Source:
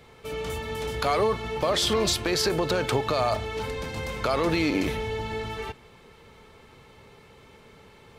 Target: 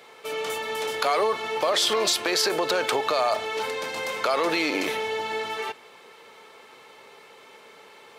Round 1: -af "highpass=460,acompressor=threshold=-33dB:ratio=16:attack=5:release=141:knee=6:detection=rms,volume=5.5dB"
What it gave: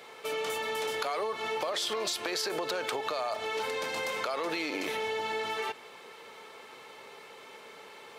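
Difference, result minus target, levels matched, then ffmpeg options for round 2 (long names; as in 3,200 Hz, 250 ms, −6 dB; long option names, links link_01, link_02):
downward compressor: peak gain reduction +10 dB
-af "highpass=460,acompressor=threshold=-21.5dB:ratio=16:attack=5:release=141:knee=6:detection=rms,volume=5.5dB"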